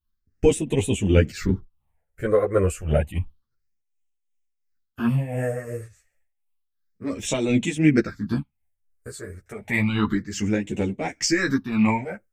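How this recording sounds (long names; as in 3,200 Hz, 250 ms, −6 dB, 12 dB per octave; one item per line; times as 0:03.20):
phaser sweep stages 6, 0.3 Hz, lowest notch 230–1,300 Hz
tremolo triangle 2.8 Hz, depth 65%
a shimmering, thickened sound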